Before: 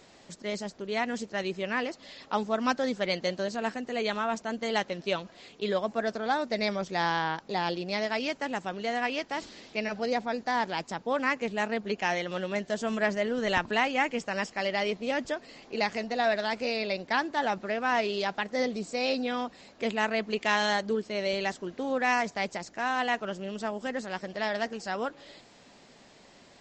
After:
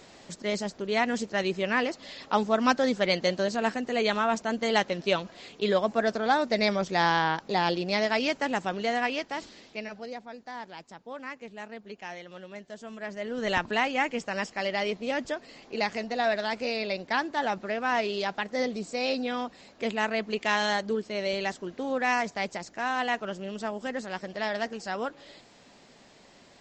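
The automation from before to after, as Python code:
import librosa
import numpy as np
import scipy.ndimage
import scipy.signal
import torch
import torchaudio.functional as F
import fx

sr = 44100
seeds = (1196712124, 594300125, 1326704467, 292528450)

y = fx.gain(x, sr, db=fx.line((8.77, 4.0), (9.7, -3.5), (10.21, -11.5), (13.0, -11.5), (13.47, 0.0)))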